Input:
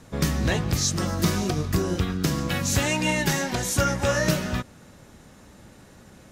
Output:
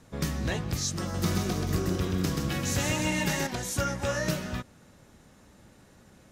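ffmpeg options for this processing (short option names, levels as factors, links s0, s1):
-filter_complex "[0:a]asettb=1/sr,asplit=3[s0][s1][s2];[s0]atrim=end=1.014[s3];[s1]atrim=start=1.01:end=3.47,asetpts=PTS-STARTPTS,afade=t=in:d=0.004:c=qsin,afade=t=out:st=2.456:d=0.004:c=qsin,aecho=1:1:130|279.5|451.4|649.1|876.5:0.631|0.398|0.251|0.158|0.1,atrim=end_sample=108486[s4];[s2]atrim=start=3.466[s5];[s3][s4]acrossfade=d=0.004:c1=hsin:c2=qsin[s6];[s6][s5]acrossfade=d=0.004:c1=qsin:c2=hsin,volume=0.473"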